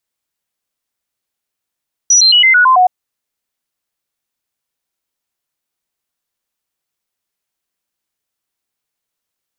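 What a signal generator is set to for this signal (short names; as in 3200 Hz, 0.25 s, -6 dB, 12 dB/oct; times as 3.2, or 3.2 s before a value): stepped sine 5860 Hz down, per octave 2, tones 7, 0.11 s, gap 0.00 s -5 dBFS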